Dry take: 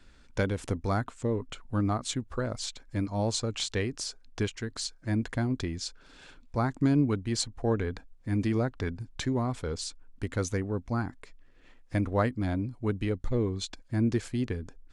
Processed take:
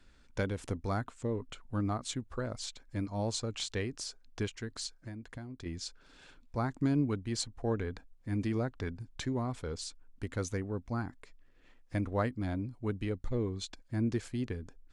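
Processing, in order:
0:04.94–0:05.66: downward compressor 10 to 1, threshold −36 dBFS, peak gain reduction 12.5 dB
level −5 dB

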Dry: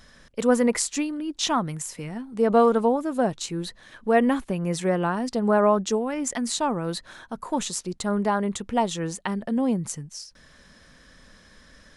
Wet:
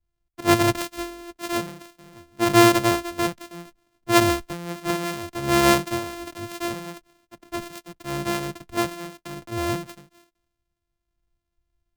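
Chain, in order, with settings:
samples sorted by size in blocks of 128 samples
multiband upward and downward expander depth 100%
level −3 dB

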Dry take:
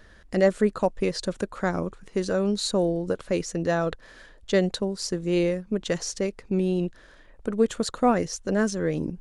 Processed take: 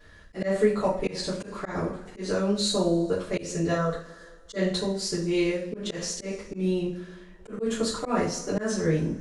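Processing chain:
0:03.72–0:04.56: phaser with its sweep stopped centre 510 Hz, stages 8
coupled-rooms reverb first 0.4 s, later 1.9 s, from −21 dB, DRR −9.5 dB
volume swells 134 ms
level −8.5 dB

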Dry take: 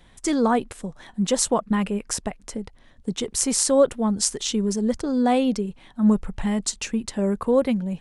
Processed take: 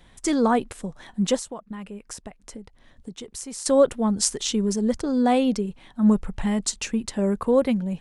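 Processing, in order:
0:01.36–0:03.66: downward compressor 2.5 to 1, threshold −40 dBFS, peak gain reduction 15.5 dB

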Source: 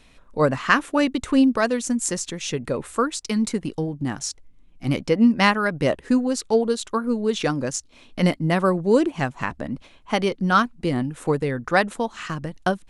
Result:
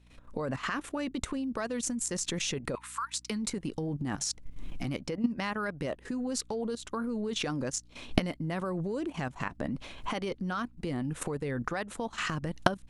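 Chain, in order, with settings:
camcorder AGC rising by 52 dB per second
0:02.75–0:03.30: elliptic high-pass filter 950 Hz, stop band 40 dB
output level in coarse steps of 12 dB
mains hum 60 Hz, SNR 26 dB
level −8.5 dB

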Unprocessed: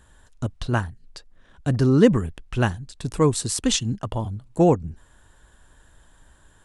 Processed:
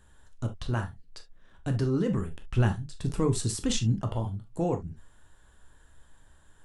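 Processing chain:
brickwall limiter −14 dBFS, peak gain reduction 11.5 dB
0:02.43–0:04.11: low-shelf EQ 370 Hz +6 dB
on a send: convolution reverb, pre-delay 10 ms, DRR 5 dB
on the sum: level −6.5 dB

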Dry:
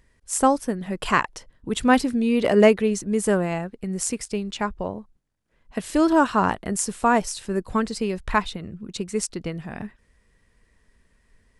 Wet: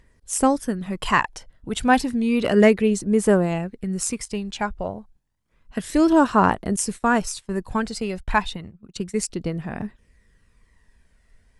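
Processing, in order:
0:06.76–0:09.16: noise gate −33 dBFS, range −19 dB
phase shifter 0.31 Hz, delay 1.5 ms, feedback 38%

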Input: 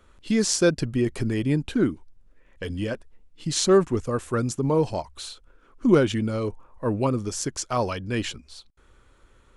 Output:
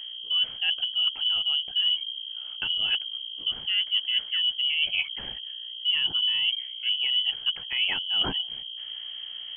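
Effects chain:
noise gate with hold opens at −52 dBFS
parametric band 240 Hz +15 dB 0.58 octaves
reversed playback
downward compressor 12 to 1, threshold −30 dBFS, peak gain reduction 26.5 dB
reversed playback
mains hum 60 Hz, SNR 11 dB
voice inversion scrambler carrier 3,200 Hz
level +6.5 dB

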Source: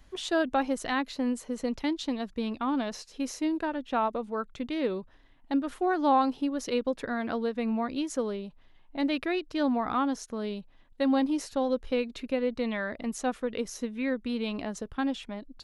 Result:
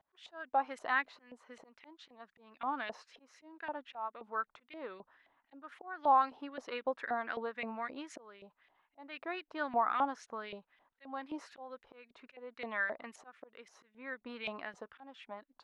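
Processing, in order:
volume swells 453 ms
auto-filter band-pass saw up 3.8 Hz 680–2,400 Hz
level +4 dB

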